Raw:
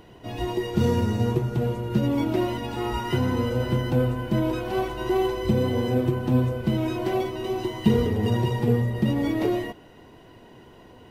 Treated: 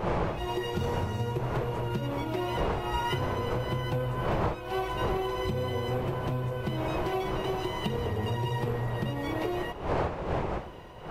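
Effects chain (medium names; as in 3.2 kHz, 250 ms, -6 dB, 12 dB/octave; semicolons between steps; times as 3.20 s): wind noise 470 Hz -25 dBFS; compression 6:1, threshold -25 dBFS, peak gain reduction 16 dB; fifteen-band graphic EQ 250 Hz -10 dB, 1 kHz +4 dB, 2.5 kHz +3 dB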